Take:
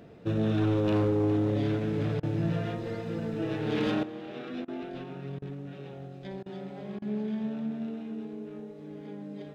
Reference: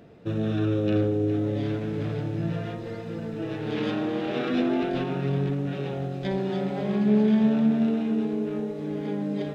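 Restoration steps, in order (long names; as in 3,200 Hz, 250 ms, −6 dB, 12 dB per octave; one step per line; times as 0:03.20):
clipped peaks rebuilt −21.5 dBFS
repair the gap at 0:02.20/0:04.65/0:05.39/0:06.43/0:06.99, 29 ms
level correction +12 dB, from 0:04.03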